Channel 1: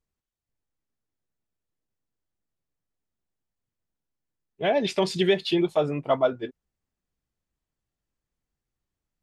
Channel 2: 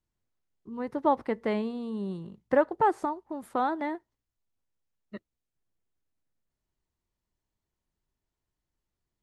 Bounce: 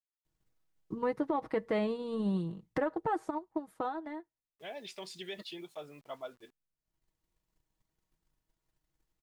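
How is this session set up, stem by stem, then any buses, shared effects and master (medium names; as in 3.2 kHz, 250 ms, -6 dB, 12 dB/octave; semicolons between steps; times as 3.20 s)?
-19.5 dB, 0.00 s, no send, tilt EQ +2.5 dB/octave; word length cut 8-bit, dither none
+0.5 dB, 0.25 s, no send, comb 6.3 ms, depth 58%; peak limiter -20 dBFS, peak gain reduction 11 dB; transient shaper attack +9 dB, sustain -3 dB; auto duck -17 dB, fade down 2.00 s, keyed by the first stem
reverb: none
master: peak limiter -22.5 dBFS, peak gain reduction 11.5 dB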